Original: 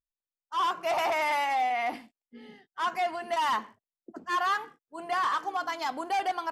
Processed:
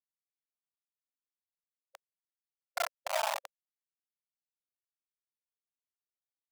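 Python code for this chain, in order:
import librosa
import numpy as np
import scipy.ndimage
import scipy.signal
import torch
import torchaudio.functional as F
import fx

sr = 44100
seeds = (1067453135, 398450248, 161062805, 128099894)

p1 = fx.delta_hold(x, sr, step_db=-35.0)
p2 = fx.doppler_pass(p1, sr, speed_mps=27, closest_m=3.6, pass_at_s=2.72)
p3 = fx.tilt_eq(p2, sr, slope=-4.0)
p4 = fx.doubler(p3, sr, ms=30.0, db=-8)
p5 = p4 + fx.echo_single(p4, sr, ms=137, db=-13.5, dry=0)
p6 = fx.rev_schroeder(p5, sr, rt60_s=2.0, comb_ms=38, drr_db=4.5)
p7 = fx.schmitt(p6, sr, flips_db=-33.0)
p8 = fx.brickwall_highpass(p7, sr, low_hz=540.0)
y = p8 * 10.0 ** (2.0 / 20.0)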